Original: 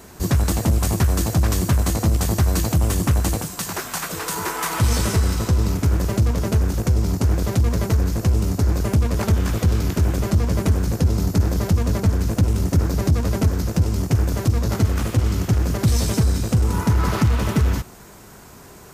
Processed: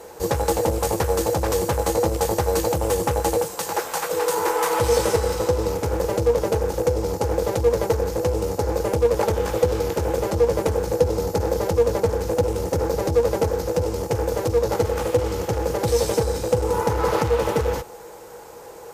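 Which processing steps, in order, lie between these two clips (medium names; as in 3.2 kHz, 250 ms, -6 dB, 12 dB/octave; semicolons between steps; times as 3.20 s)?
resonant low shelf 380 Hz -7 dB, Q 3; small resonant body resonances 330/480/830 Hz, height 15 dB, ringing for 65 ms; Chebyshev shaper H 2 -26 dB, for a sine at -3.5 dBFS; trim -2 dB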